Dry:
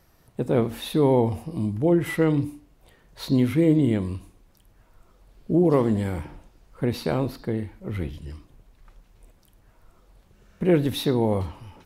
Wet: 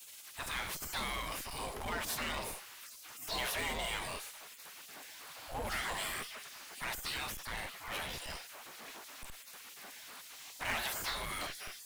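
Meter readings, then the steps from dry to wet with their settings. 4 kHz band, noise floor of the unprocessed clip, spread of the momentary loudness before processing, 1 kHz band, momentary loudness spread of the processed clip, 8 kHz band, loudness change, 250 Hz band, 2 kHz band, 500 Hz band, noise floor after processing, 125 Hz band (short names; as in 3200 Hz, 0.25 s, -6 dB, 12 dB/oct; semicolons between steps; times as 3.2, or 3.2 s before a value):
-0.5 dB, -59 dBFS, 15 LU, -6.0 dB, 13 LU, n/a, -16.0 dB, -28.5 dB, +0.5 dB, -22.0 dB, -53 dBFS, -25.5 dB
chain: spectral gate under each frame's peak -30 dB weak; in parallel at -9 dB: Schmitt trigger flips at -49 dBFS; on the sum: power-law curve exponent 0.5; gain -2.5 dB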